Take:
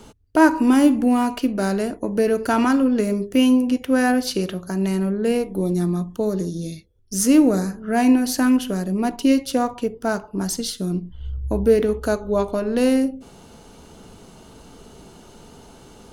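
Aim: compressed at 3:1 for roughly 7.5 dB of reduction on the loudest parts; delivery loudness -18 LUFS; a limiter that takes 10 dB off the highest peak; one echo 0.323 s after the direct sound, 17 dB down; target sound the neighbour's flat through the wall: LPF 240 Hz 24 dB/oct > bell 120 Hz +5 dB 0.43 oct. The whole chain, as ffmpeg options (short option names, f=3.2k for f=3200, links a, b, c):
-af "acompressor=threshold=-20dB:ratio=3,alimiter=limit=-19dB:level=0:latency=1,lowpass=f=240:w=0.5412,lowpass=f=240:w=1.3066,equalizer=f=120:t=o:w=0.43:g=5,aecho=1:1:323:0.141,volume=13dB"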